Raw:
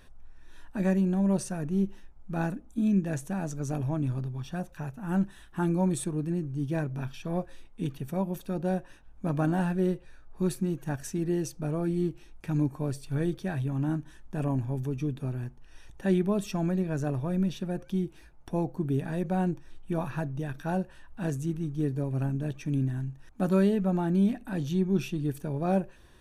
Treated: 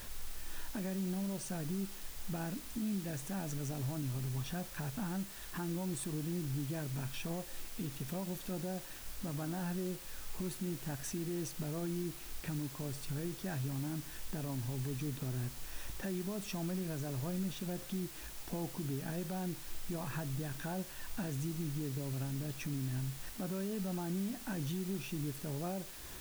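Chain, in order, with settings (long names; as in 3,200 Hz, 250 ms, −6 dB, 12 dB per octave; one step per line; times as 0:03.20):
downward compressor, threshold −39 dBFS, peak gain reduction 18 dB
brickwall limiter −37 dBFS, peak gain reduction 8.5 dB
background noise white −56 dBFS
level +5.5 dB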